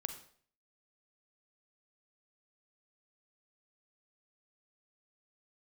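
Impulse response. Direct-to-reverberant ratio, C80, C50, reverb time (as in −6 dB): 7.5 dB, 12.5 dB, 9.5 dB, 0.55 s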